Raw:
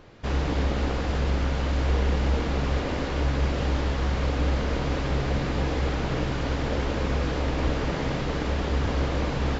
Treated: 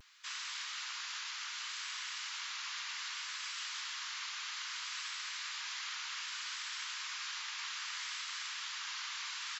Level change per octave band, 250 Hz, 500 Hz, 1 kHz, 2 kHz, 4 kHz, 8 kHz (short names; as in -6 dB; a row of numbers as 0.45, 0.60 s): under -40 dB, under -40 dB, -14.5 dB, -6.5 dB, -0.5 dB, n/a